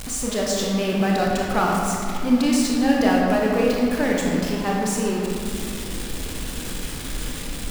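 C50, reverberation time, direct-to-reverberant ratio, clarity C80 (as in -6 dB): 0.0 dB, 2.5 s, -2.5 dB, 1.5 dB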